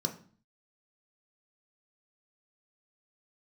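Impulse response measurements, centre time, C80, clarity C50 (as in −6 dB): 12 ms, 16.5 dB, 12.5 dB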